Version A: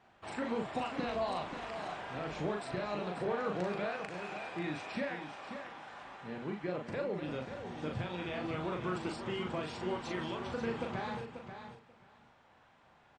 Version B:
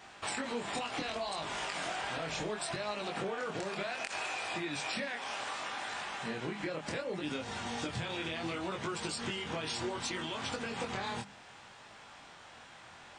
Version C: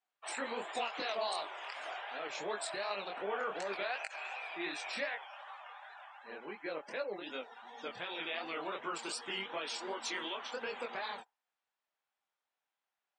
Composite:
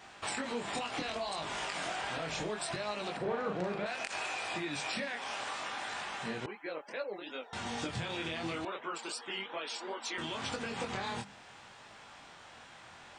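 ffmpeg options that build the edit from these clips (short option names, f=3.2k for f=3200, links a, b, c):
-filter_complex "[2:a]asplit=2[a][b];[1:a]asplit=4[c][d][e][f];[c]atrim=end=3.172[g];[0:a]atrim=start=3.168:end=3.862[h];[d]atrim=start=3.858:end=6.462[i];[a]atrim=start=6.458:end=7.532[j];[e]atrim=start=7.528:end=8.652[k];[b]atrim=start=8.648:end=10.182[l];[f]atrim=start=10.178[m];[g][h]acrossfade=d=0.004:c1=hsin:c2=hsin[n];[n][i]acrossfade=d=0.004:c1=hsin:c2=hsin[o];[o][j]acrossfade=d=0.004:c1=hsin:c2=hsin[p];[p][k]acrossfade=d=0.004:c1=hsin:c2=hsin[q];[q][l]acrossfade=d=0.004:c1=hsin:c2=hsin[r];[r][m]acrossfade=d=0.004:c1=hsin:c2=hsin"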